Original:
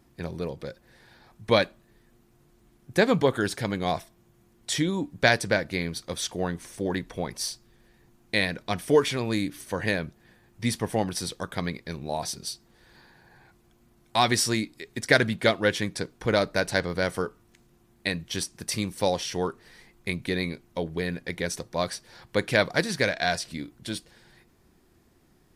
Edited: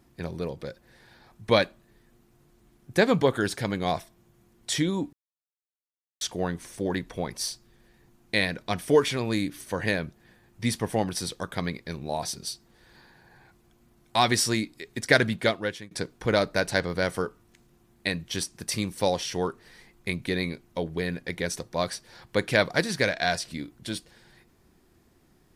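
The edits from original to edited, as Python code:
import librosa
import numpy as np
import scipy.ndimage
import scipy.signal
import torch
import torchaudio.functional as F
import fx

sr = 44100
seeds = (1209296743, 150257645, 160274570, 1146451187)

y = fx.edit(x, sr, fx.silence(start_s=5.13, length_s=1.08),
    fx.fade_out_to(start_s=15.34, length_s=0.57, floor_db=-23.0), tone=tone)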